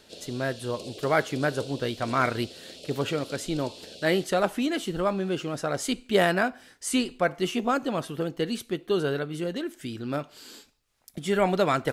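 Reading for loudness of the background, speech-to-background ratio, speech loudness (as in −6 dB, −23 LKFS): −42.5 LKFS, 14.5 dB, −28.0 LKFS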